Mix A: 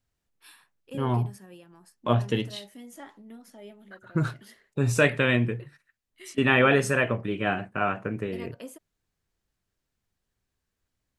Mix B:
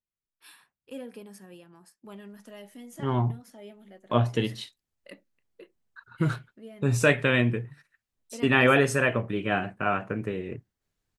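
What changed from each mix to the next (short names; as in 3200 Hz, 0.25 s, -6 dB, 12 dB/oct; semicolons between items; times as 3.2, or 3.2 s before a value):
second voice: entry +2.05 s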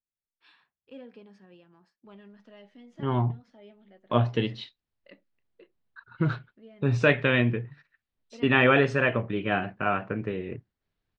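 first voice -5.5 dB; master: add LPF 4400 Hz 24 dB/oct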